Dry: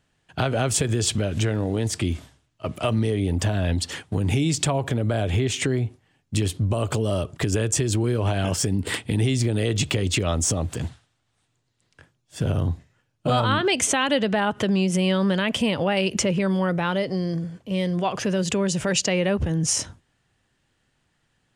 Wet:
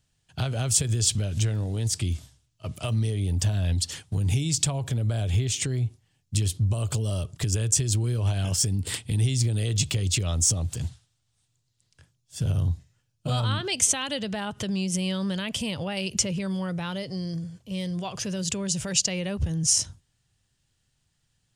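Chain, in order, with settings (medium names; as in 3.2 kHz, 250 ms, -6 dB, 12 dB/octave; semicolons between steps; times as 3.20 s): FFT filter 120 Hz 0 dB, 280 Hz -11 dB, 1.9 kHz -10 dB, 5.2 kHz +2 dB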